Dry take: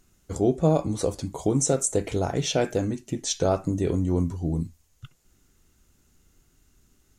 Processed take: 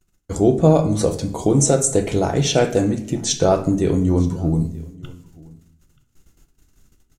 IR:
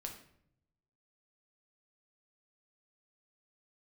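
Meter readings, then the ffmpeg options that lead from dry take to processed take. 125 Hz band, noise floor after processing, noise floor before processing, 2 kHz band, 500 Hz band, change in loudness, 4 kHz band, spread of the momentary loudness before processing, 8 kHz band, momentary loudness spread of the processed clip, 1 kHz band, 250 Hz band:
+7.5 dB, −65 dBFS, −65 dBFS, +7.0 dB, +7.0 dB, +7.0 dB, +7.0 dB, 7 LU, +6.5 dB, 8 LU, +7.0 dB, +7.5 dB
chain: -filter_complex "[0:a]agate=range=-27dB:threshold=-59dB:ratio=16:detection=peak,aecho=1:1:930:0.0631,asplit=2[link_01][link_02];[1:a]atrim=start_sample=2205[link_03];[link_02][link_03]afir=irnorm=-1:irlink=0,volume=5dB[link_04];[link_01][link_04]amix=inputs=2:normalize=0"

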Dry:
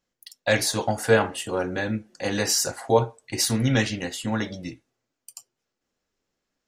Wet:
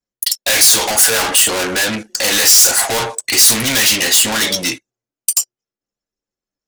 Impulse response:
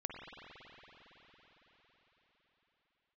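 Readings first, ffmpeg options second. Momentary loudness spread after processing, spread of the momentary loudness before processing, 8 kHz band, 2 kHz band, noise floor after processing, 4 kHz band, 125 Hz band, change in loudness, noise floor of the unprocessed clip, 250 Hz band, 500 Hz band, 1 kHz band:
11 LU, 9 LU, +18.5 dB, +11.5 dB, below −85 dBFS, +16.5 dB, −4.0 dB, +13.0 dB, −83 dBFS, +2.0 dB, +1.5 dB, +7.0 dB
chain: -filter_complex "[0:a]asplit=2[link_01][link_02];[link_02]highpass=frequency=720:poles=1,volume=39dB,asoftclip=type=tanh:threshold=-5dB[link_03];[link_01][link_03]amix=inputs=2:normalize=0,lowpass=frequency=7400:poles=1,volume=-6dB,crystalizer=i=5:c=0,anlmdn=398,volume=-9dB"

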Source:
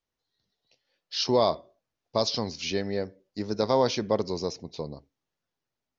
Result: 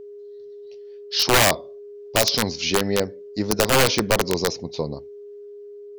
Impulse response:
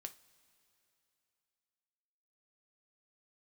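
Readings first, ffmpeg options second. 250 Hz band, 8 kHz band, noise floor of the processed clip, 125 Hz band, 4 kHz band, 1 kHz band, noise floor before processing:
+5.5 dB, can't be measured, −40 dBFS, +8.0 dB, +9.5 dB, +6.0 dB, below −85 dBFS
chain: -af "aeval=exprs='val(0)+0.00562*sin(2*PI*410*n/s)':channel_layout=same,aeval=exprs='(mod(7.5*val(0)+1,2)-1)/7.5':channel_layout=same,volume=8dB"

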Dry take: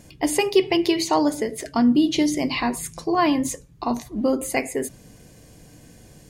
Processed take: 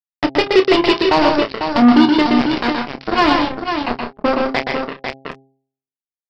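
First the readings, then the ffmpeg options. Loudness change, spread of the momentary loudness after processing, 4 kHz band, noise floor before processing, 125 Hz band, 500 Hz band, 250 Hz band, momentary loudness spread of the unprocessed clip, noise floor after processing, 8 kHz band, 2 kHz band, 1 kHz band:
+6.5 dB, 12 LU, +8.0 dB, −49 dBFS, +6.0 dB, +6.5 dB, +6.0 dB, 10 LU, below −85 dBFS, below −10 dB, +10.0 dB, +8.5 dB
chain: -filter_complex "[0:a]aresample=11025,acrusher=bits=2:mix=0:aa=0.5,aresample=44100,aecho=1:1:123|150|157|497:0.596|0.15|0.282|0.422,areverse,acompressor=mode=upward:threshold=-24dB:ratio=2.5,areverse,asplit=2[link_01][link_02];[link_02]adelay=29,volume=-10.5dB[link_03];[link_01][link_03]amix=inputs=2:normalize=0,bandreject=frequency=134:width_type=h:width=4,bandreject=frequency=268:width_type=h:width=4,bandreject=frequency=402:width_type=h:width=4,bandreject=frequency=536:width_type=h:width=4,bandreject=frequency=670:width_type=h:width=4,bandreject=frequency=804:width_type=h:width=4,acontrast=31"

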